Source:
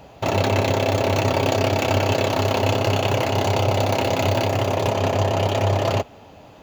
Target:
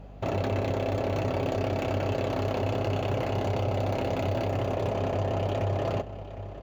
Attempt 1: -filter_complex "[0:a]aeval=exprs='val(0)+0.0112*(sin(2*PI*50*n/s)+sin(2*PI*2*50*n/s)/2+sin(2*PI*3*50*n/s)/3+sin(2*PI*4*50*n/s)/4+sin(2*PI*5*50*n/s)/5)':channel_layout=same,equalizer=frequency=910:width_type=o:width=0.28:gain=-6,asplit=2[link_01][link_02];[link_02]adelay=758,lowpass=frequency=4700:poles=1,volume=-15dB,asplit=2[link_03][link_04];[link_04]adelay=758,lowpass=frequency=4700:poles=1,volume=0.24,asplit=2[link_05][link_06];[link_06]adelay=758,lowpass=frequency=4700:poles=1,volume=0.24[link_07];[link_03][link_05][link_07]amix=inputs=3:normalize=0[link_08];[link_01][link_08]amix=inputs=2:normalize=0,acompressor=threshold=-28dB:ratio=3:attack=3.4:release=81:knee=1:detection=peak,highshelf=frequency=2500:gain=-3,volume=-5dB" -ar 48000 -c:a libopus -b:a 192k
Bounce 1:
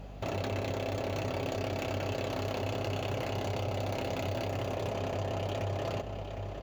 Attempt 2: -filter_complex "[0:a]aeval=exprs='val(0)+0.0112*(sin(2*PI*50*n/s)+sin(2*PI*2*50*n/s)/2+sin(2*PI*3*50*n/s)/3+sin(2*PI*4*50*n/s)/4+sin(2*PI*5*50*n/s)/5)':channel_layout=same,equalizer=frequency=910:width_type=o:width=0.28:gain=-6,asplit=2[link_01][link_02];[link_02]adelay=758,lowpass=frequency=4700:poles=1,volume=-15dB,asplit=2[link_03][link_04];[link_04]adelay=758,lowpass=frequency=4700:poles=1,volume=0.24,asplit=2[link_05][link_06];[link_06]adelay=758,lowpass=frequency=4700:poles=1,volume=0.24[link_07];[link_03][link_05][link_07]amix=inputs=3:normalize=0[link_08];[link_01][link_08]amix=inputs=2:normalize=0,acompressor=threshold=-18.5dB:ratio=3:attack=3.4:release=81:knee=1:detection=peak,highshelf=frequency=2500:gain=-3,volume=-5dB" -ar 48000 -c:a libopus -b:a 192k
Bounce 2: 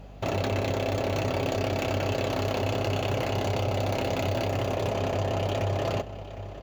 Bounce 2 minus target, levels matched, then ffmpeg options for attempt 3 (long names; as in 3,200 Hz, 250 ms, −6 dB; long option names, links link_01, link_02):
4,000 Hz band +5.5 dB
-filter_complex "[0:a]aeval=exprs='val(0)+0.0112*(sin(2*PI*50*n/s)+sin(2*PI*2*50*n/s)/2+sin(2*PI*3*50*n/s)/3+sin(2*PI*4*50*n/s)/4+sin(2*PI*5*50*n/s)/5)':channel_layout=same,equalizer=frequency=910:width_type=o:width=0.28:gain=-6,asplit=2[link_01][link_02];[link_02]adelay=758,lowpass=frequency=4700:poles=1,volume=-15dB,asplit=2[link_03][link_04];[link_04]adelay=758,lowpass=frequency=4700:poles=1,volume=0.24,asplit=2[link_05][link_06];[link_06]adelay=758,lowpass=frequency=4700:poles=1,volume=0.24[link_07];[link_03][link_05][link_07]amix=inputs=3:normalize=0[link_08];[link_01][link_08]amix=inputs=2:normalize=0,acompressor=threshold=-18.5dB:ratio=3:attack=3.4:release=81:knee=1:detection=peak,highshelf=frequency=2500:gain=-12.5,volume=-5dB" -ar 48000 -c:a libopus -b:a 192k